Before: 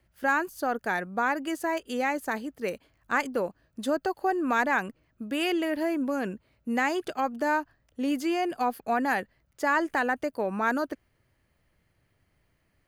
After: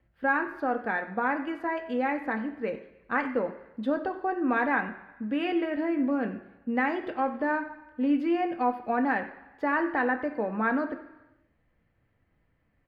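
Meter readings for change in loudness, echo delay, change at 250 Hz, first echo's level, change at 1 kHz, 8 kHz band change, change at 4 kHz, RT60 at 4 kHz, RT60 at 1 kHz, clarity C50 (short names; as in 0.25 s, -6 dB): -0.5 dB, 91 ms, +2.0 dB, -17.0 dB, -1.0 dB, under -25 dB, -8.0 dB, 1.0 s, 1.1 s, 10.5 dB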